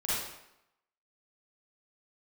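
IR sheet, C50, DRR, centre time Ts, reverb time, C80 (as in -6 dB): -4.5 dB, -10.0 dB, 87 ms, 0.85 s, 1.0 dB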